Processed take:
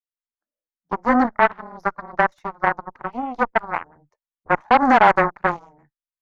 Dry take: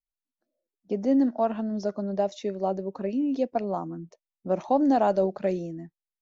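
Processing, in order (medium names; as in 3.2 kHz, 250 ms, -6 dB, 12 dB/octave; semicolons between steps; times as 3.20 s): frequency shift -21 Hz; Chebyshev shaper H 4 -19 dB, 5 -32 dB, 7 -15 dB, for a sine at -11 dBFS; high-order bell 1.3 kHz +12.5 dB; trim +2 dB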